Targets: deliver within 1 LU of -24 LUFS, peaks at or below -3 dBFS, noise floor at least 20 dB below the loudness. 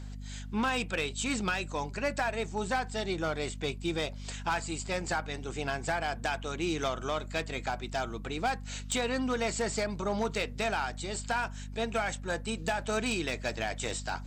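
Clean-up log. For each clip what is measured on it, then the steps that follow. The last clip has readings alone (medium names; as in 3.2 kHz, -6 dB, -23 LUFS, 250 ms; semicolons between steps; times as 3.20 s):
clipped samples 0.7%; clipping level -23.0 dBFS; hum 50 Hz; highest harmonic 250 Hz; hum level -39 dBFS; loudness -33.0 LUFS; peak level -23.0 dBFS; loudness target -24.0 LUFS
-> clip repair -23 dBFS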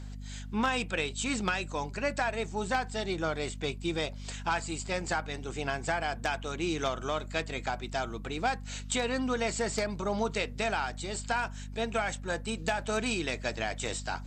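clipped samples 0.0%; hum 50 Hz; highest harmonic 250 Hz; hum level -39 dBFS
-> de-hum 50 Hz, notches 5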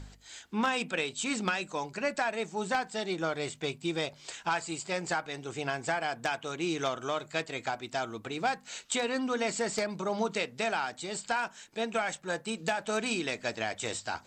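hum not found; loudness -33.0 LUFS; peak level -14.0 dBFS; loudness target -24.0 LUFS
-> trim +9 dB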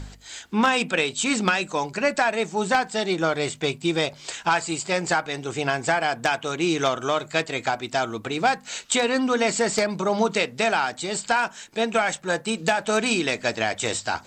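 loudness -24.0 LUFS; peak level -5.0 dBFS; noise floor -47 dBFS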